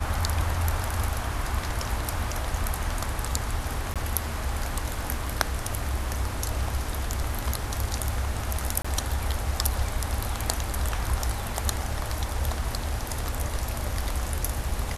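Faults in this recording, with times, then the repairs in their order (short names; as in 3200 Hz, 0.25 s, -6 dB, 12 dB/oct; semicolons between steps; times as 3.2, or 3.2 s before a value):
3.94–3.96 gap 17 ms
8.82–8.85 gap 25 ms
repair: interpolate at 3.94, 17 ms; interpolate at 8.82, 25 ms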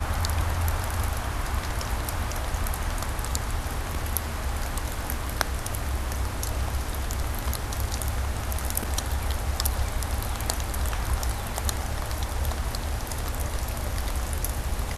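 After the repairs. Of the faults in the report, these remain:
none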